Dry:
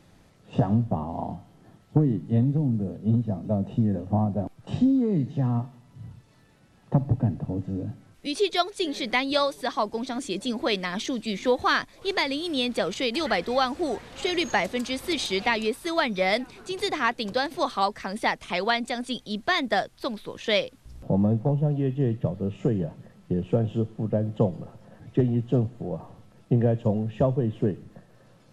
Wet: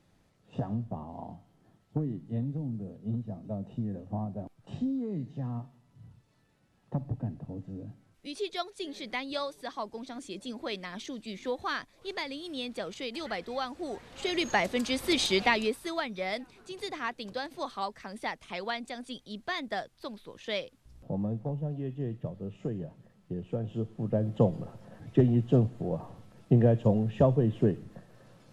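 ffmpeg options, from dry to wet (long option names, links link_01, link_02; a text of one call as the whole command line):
ffmpeg -i in.wav -af "volume=10.5dB,afade=type=in:start_time=13.79:duration=1.47:silence=0.266073,afade=type=out:start_time=15.26:duration=0.79:silence=0.281838,afade=type=in:start_time=23.59:duration=0.98:silence=0.334965" out.wav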